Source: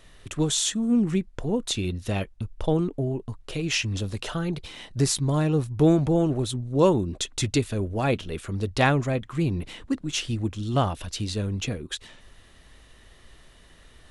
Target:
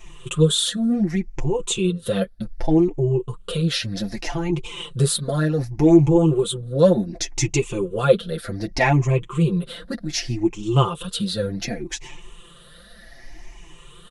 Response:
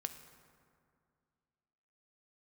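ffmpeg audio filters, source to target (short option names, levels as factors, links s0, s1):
-filter_complex "[0:a]afftfilt=real='re*pow(10,14/40*sin(2*PI*(0.7*log(max(b,1)*sr/1024/100)/log(2)-(0.66)*(pts-256)/sr)))':imag='im*pow(10,14/40*sin(2*PI*(0.7*log(max(b,1)*sr/1024/100)/log(2)-(0.66)*(pts-256)/sr)))':win_size=1024:overlap=0.75,aecho=1:1:5.8:0.82,flanger=delay=4.1:depth=4.1:regen=9:speed=1.7:shape=triangular,asplit=2[s0][s1];[s1]acompressor=threshold=0.0224:ratio=12,volume=1[s2];[s0][s2]amix=inputs=2:normalize=0,adynamicequalizer=threshold=0.0141:dfrequency=450:dqfactor=3.1:tfrequency=450:tqfactor=3.1:attack=5:release=100:ratio=0.375:range=3.5:mode=boostabove:tftype=bell"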